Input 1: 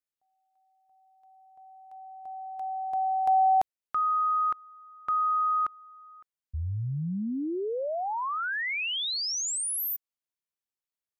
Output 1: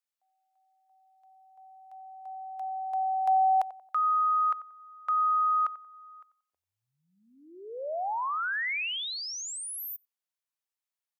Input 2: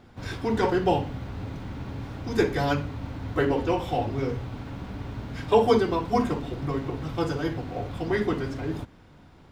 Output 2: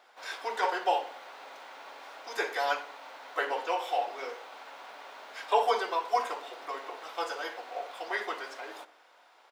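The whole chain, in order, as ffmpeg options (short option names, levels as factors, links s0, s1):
-filter_complex "[0:a]acrossover=split=2600[s0][s1];[s1]acompressor=threshold=0.0141:ratio=4:attack=1:release=60[s2];[s0][s2]amix=inputs=2:normalize=0,highpass=f=600:w=0.5412,highpass=f=600:w=1.3066,asplit=2[s3][s4];[s4]adelay=91,lowpass=f=1300:p=1,volume=0.2,asplit=2[s5][s6];[s6]adelay=91,lowpass=f=1300:p=1,volume=0.39,asplit=2[s7][s8];[s8]adelay=91,lowpass=f=1300:p=1,volume=0.39,asplit=2[s9][s10];[s10]adelay=91,lowpass=f=1300:p=1,volume=0.39[s11];[s5][s7][s9][s11]amix=inputs=4:normalize=0[s12];[s3][s12]amix=inputs=2:normalize=0"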